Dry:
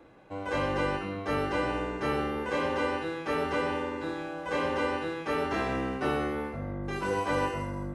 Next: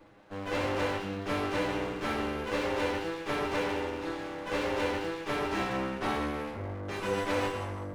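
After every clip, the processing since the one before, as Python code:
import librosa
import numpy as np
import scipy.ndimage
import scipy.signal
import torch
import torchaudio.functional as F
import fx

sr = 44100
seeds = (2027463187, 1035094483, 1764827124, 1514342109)

y = fx.lower_of_two(x, sr, delay_ms=9.8)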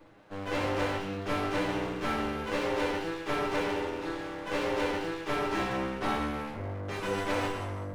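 y = fx.room_shoebox(x, sr, seeds[0], volume_m3=180.0, walls='furnished', distance_m=0.45)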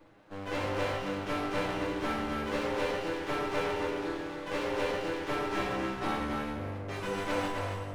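y = x + 10.0 ** (-5.5 / 20.0) * np.pad(x, (int(272 * sr / 1000.0), 0))[:len(x)]
y = y * librosa.db_to_amplitude(-2.5)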